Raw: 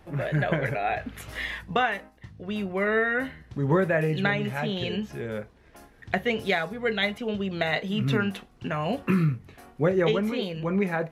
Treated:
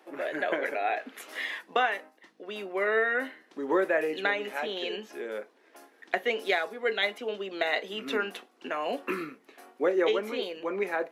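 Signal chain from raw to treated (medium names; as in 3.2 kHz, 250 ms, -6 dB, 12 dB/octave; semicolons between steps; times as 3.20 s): steep high-pass 280 Hz 36 dB/octave; trim -1.5 dB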